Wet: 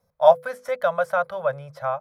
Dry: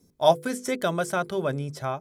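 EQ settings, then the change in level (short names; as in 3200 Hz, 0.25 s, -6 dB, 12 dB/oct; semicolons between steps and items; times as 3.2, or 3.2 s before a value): EQ curve 130 Hz 0 dB, 210 Hz -8 dB, 340 Hz -28 dB, 530 Hz +13 dB, 800 Hz +10 dB, 1300 Hz +12 dB, 3000 Hz -1 dB, 4300 Hz -1 dB, 7700 Hz -12 dB, 12000 Hz -2 dB; -6.5 dB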